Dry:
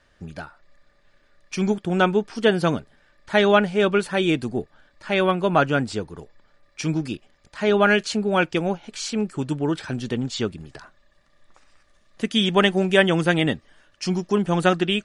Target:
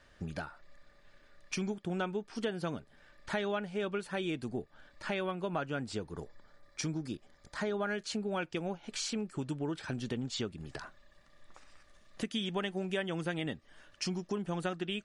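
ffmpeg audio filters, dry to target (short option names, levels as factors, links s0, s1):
-filter_complex "[0:a]asettb=1/sr,asplit=3[s0][s1][s2];[s0]atrim=end=6.124[s3];[s1]atrim=start=6.12:end=8.05,asetpts=PTS-STARTPTS,afade=t=in:d=0.004:c=qsin,afade=t=out:st=1.926:d=0.004:c=qsin,equalizer=f=2700:t=o:w=0.38:g=-9.5[s4];[s2]atrim=start=8.046[s5];[s3][s4]acrossfade=d=0.004:c1=hsin:c2=qsin[s6];[s6][s5]acrossfade=d=0.004:c1=qsin:c2=hsin,acompressor=threshold=0.02:ratio=4,volume=0.891"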